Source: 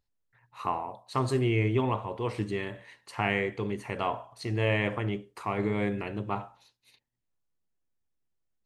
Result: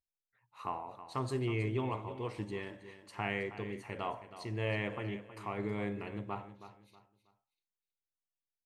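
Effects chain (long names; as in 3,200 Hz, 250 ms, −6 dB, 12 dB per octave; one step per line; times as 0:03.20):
noise reduction from a noise print of the clip's start 13 dB
on a send: repeating echo 320 ms, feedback 31%, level −13 dB
on the sum: level −8 dB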